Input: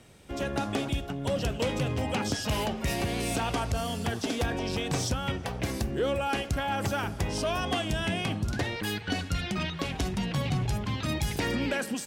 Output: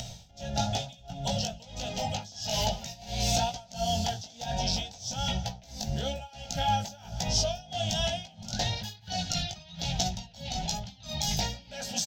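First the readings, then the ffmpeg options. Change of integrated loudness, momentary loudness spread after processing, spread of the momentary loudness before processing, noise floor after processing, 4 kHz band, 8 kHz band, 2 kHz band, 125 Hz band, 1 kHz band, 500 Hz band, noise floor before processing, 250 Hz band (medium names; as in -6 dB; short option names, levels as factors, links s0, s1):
-1.5 dB, 9 LU, 3 LU, -53 dBFS, +3.5 dB, +5.0 dB, -8.0 dB, -3.0 dB, +0.5 dB, -4.0 dB, -39 dBFS, -7.0 dB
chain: -af "flanger=delay=16:depth=3.8:speed=1.1,asuperstop=centerf=1100:order=8:qfactor=5.2,bass=f=250:g=11,treble=f=4000:g=5,afftfilt=real='re*lt(hypot(re,im),0.447)':imag='im*lt(hypot(re,im),0.447)':win_size=1024:overlap=0.75,acompressor=mode=upward:threshold=0.0316:ratio=2.5,firequalizer=gain_entry='entry(140,0);entry(220,-4);entry(320,-18);entry(690,11);entry(1200,-4);entry(2100,-3);entry(3400,10);entry(6300,12);entry(9300,-13);entry(14000,2)':delay=0.05:min_phase=1,aecho=1:1:178:0.126,tremolo=f=1.5:d=0.94"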